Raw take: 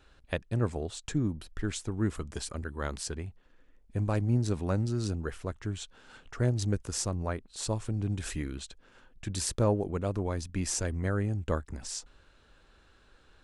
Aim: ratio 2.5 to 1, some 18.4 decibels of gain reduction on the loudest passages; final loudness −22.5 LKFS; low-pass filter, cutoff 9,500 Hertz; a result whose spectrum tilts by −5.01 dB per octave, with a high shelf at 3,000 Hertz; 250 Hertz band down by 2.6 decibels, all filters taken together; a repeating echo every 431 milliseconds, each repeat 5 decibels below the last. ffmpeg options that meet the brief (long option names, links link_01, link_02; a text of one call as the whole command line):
ffmpeg -i in.wav -af "lowpass=9500,equalizer=frequency=250:width_type=o:gain=-3.5,highshelf=frequency=3000:gain=-4,acompressor=threshold=-52dB:ratio=2.5,aecho=1:1:431|862|1293|1724|2155|2586|3017:0.562|0.315|0.176|0.0988|0.0553|0.031|0.0173,volume=26dB" out.wav